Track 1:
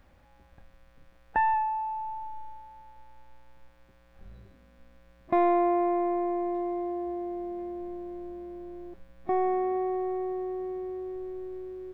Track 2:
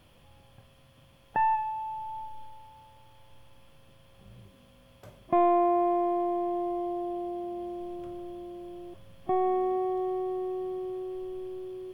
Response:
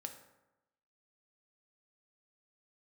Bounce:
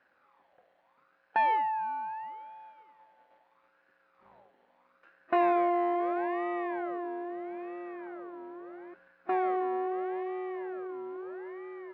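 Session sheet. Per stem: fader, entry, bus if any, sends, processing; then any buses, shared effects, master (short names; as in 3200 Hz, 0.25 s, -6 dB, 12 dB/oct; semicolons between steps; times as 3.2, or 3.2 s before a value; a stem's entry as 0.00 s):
-1.0 dB, 0.00 s, no send, gate -48 dBFS, range -7 dB
-6.0 dB, 0.00 s, polarity flipped, no send, minimum comb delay 0.81 ms; ring modulator with a swept carrier 1100 Hz, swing 45%, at 0.77 Hz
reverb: off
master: BPF 360–2200 Hz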